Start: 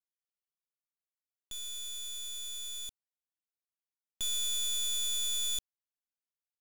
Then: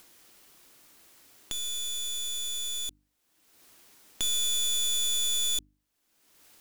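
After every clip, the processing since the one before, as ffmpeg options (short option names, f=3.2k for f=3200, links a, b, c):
-af "equalizer=f=300:w=2.1:g=8,bandreject=f=50:t=h:w=6,bandreject=f=100:t=h:w=6,bandreject=f=150:t=h:w=6,bandreject=f=200:t=h:w=6,bandreject=f=250:t=h:w=6,bandreject=f=300:t=h:w=6,acompressor=mode=upward:threshold=-36dB:ratio=2.5,volume=5dB"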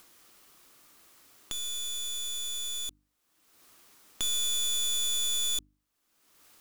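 -af "equalizer=f=1.2k:t=o:w=0.33:g=6,volume=-1.5dB"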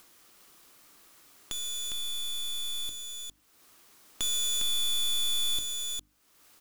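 -af "aecho=1:1:406:0.562"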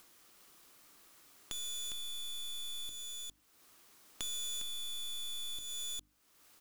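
-af "acompressor=threshold=-35dB:ratio=6,volume=-4dB"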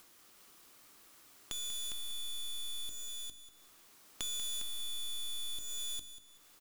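-af "aecho=1:1:190|380|570:0.266|0.0798|0.0239,volume=1dB"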